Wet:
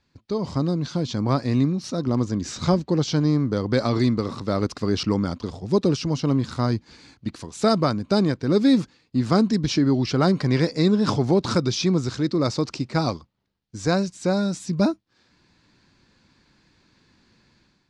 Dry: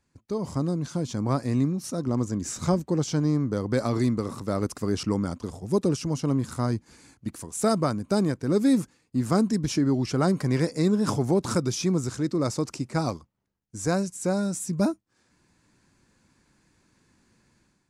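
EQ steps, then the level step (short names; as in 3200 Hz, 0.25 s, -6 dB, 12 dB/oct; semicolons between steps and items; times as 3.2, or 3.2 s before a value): synth low-pass 4200 Hz, resonance Q 2.2; +3.5 dB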